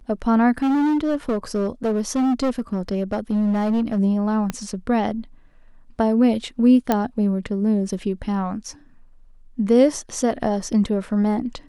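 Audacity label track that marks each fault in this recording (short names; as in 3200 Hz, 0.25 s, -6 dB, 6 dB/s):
0.620000	3.990000	clipped -17 dBFS
4.500000	4.500000	pop -11 dBFS
6.920000	6.920000	pop -6 dBFS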